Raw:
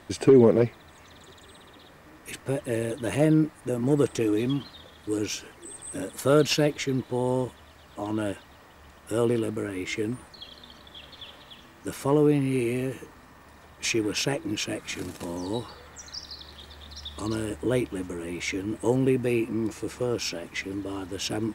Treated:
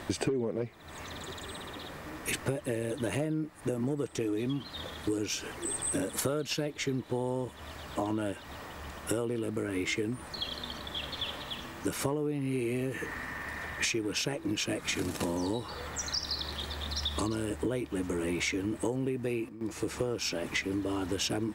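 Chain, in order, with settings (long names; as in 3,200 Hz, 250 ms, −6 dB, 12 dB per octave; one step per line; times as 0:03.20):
0:12.94–0:13.85: parametric band 1,900 Hz +13 dB 0.58 octaves
downward compressor 20 to 1, threshold −36 dBFS, peak gain reduction 24.5 dB
0:19.16–0:19.94: duck −14.5 dB, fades 0.33 s logarithmic
level +8 dB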